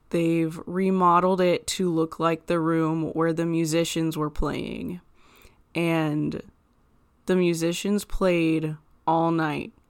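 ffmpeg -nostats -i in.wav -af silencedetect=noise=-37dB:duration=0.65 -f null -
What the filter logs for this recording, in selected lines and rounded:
silence_start: 6.49
silence_end: 7.28 | silence_duration: 0.79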